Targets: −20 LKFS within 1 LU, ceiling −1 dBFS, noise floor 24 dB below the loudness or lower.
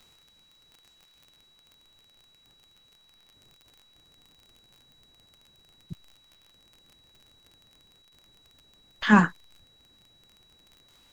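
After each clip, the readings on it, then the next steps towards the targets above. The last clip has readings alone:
crackle rate 30 per second; interfering tone 3,900 Hz; level of the tone −59 dBFS; integrated loudness −22.0 LKFS; sample peak −6.0 dBFS; target loudness −20.0 LKFS
→ click removal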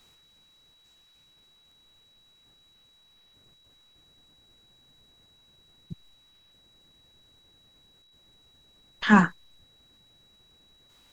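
crackle rate 0.090 per second; interfering tone 3,900 Hz; level of the tone −59 dBFS
→ notch filter 3,900 Hz, Q 30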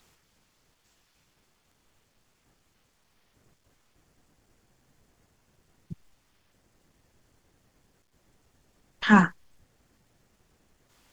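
interfering tone none found; integrated loudness −22.0 LKFS; sample peak −6.0 dBFS; target loudness −20.0 LKFS
→ level +2 dB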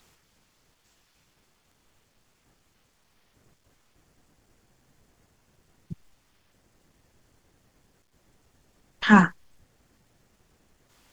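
integrated loudness −20.0 LKFS; sample peak −4.0 dBFS; background noise floor −68 dBFS

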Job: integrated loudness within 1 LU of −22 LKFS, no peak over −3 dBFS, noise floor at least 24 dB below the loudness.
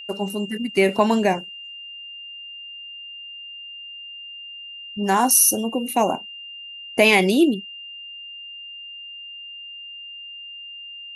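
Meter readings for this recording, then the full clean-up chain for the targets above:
interfering tone 2,800 Hz; level of the tone −35 dBFS; integrated loudness −19.0 LKFS; sample peak −2.5 dBFS; target loudness −22.0 LKFS
→ notch filter 2,800 Hz, Q 30
level −3 dB

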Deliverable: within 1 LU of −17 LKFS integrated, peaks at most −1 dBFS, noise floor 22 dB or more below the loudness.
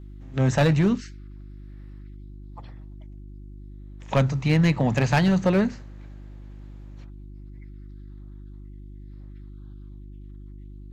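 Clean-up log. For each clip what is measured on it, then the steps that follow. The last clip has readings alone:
share of clipped samples 0.8%; peaks flattened at −14.0 dBFS; mains hum 50 Hz; hum harmonics up to 350 Hz; level of the hum −39 dBFS; integrated loudness −22.0 LKFS; sample peak −14.0 dBFS; target loudness −17.0 LKFS
→ clipped peaks rebuilt −14 dBFS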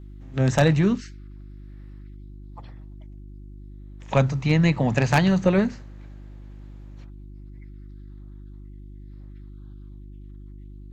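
share of clipped samples 0.0%; mains hum 50 Hz; hum harmonics up to 100 Hz; level of the hum −39 dBFS
→ hum removal 50 Hz, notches 2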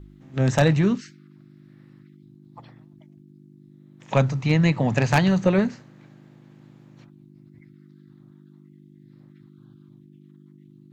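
mains hum none found; integrated loudness −21.5 LKFS; sample peak −4.5 dBFS; target loudness −17.0 LKFS
→ level +4.5 dB
brickwall limiter −1 dBFS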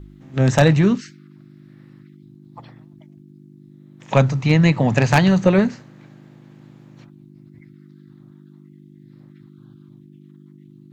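integrated loudness −17.0 LKFS; sample peak −1.0 dBFS; background noise floor −47 dBFS

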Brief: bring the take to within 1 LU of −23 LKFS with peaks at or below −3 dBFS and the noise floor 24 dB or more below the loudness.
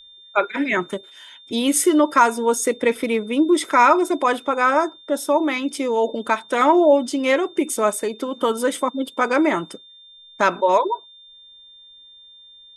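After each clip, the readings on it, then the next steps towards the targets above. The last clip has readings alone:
interfering tone 3,600 Hz; level of the tone −44 dBFS; integrated loudness −19.5 LKFS; sample peak −2.0 dBFS; target loudness −23.0 LKFS
→ notch filter 3,600 Hz, Q 30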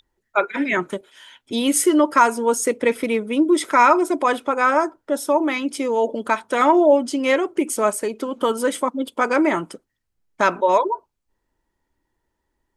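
interfering tone none found; integrated loudness −19.5 LKFS; sample peak −2.0 dBFS; target loudness −23.0 LKFS
→ level −3.5 dB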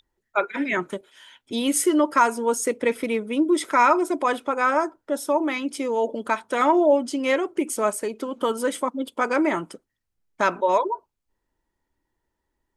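integrated loudness −23.0 LKFS; sample peak −5.5 dBFS; background noise floor −80 dBFS

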